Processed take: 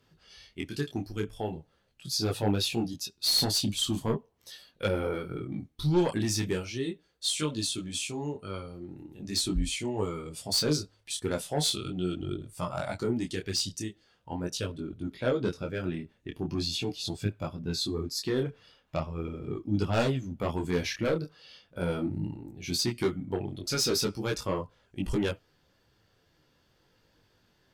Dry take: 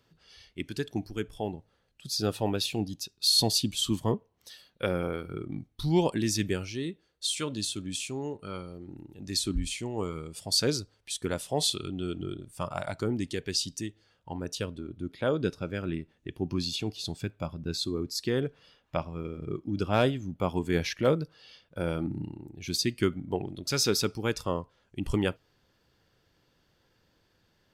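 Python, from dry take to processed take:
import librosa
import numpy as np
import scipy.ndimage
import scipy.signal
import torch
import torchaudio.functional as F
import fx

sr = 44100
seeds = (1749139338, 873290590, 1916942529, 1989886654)

y = fx.fold_sine(x, sr, drive_db=6, ceiling_db=-11.5)
y = fx.detune_double(y, sr, cents=14)
y = y * librosa.db_to_amplitude(-5.0)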